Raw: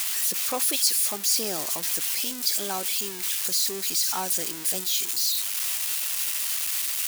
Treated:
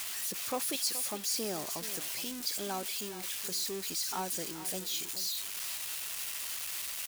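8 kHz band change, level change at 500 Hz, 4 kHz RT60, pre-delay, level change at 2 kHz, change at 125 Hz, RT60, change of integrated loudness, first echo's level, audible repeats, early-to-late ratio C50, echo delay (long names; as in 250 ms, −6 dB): −10.5 dB, −4.0 dB, no reverb audible, no reverb audible, −7.5 dB, −2.0 dB, no reverb audible, −10.5 dB, −13.5 dB, 1, no reverb audible, 425 ms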